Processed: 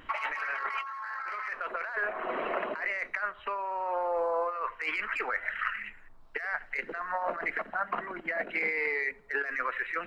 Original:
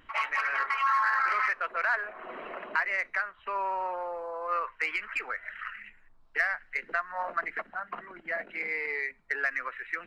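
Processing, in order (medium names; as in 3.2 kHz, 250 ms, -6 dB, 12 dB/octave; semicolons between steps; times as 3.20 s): peaking EQ 580 Hz +3 dB 2.3 oct; compressor with a negative ratio -34 dBFS, ratio -1; on a send: feedback echo behind a band-pass 82 ms, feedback 49%, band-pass 460 Hz, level -17.5 dB; on the sum: trim +1.5 dB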